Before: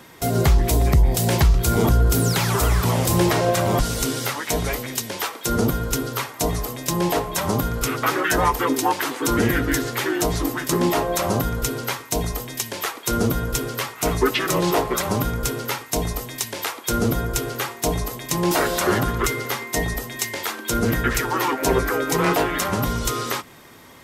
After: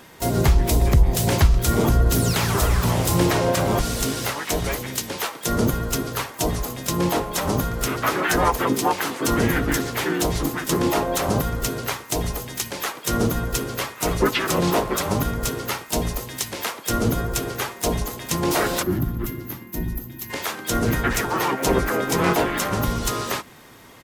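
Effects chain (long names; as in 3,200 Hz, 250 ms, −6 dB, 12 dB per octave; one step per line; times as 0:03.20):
pitch-shifted copies added −12 semitones −9 dB, −4 semitones −10 dB, +5 semitones −12 dB
gain on a spectral selection 0:18.83–0:20.30, 380–11,000 Hz −15 dB
level −1.5 dB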